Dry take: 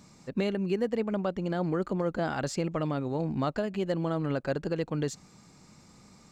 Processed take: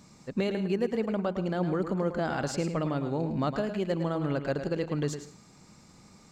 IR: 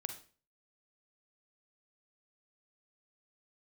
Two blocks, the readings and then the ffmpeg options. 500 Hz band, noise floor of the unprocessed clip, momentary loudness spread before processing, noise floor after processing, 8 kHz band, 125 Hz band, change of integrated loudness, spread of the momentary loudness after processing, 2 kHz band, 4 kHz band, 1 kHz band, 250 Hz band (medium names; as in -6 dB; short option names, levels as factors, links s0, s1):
+0.5 dB, -57 dBFS, 3 LU, -56 dBFS, +0.5 dB, +0.5 dB, +0.5 dB, 3 LU, +0.5 dB, +0.5 dB, +0.5 dB, +0.5 dB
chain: -filter_complex "[0:a]asplit=2[s0][s1];[1:a]atrim=start_sample=2205,adelay=108[s2];[s1][s2]afir=irnorm=-1:irlink=0,volume=0.447[s3];[s0][s3]amix=inputs=2:normalize=0"